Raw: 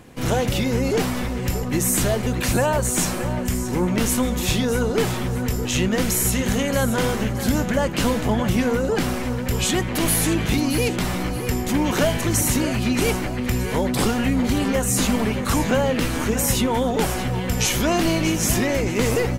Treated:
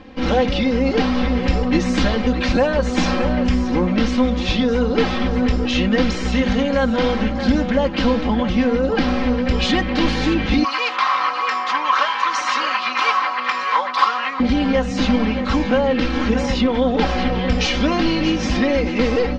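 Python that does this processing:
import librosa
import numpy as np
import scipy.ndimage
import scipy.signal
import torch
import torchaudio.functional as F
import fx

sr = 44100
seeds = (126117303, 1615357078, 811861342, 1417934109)

y = fx.highpass_res(x, sr, hz=1100.0, q=7.0, at=(10.64, 14.4))
y = fx.peak_eq(y, sr, hz=11000.0, db=-12.0, octaves=0.41, at=(16.46, 17.34))
y = scipy.signal.sosfilt(scipy.signal.butter(6, 5000.0, 'lowpass', fs=sr, output='sos'), y)
y = y + 0.87 * np.pad(y, (int(3.8 * sr / 1000.0), 0))[:len(y)]
y = fx.rider(y, sr, range_db=10, speed_s=0.5)
y = y * librosa.db_to_amplitude(1.0)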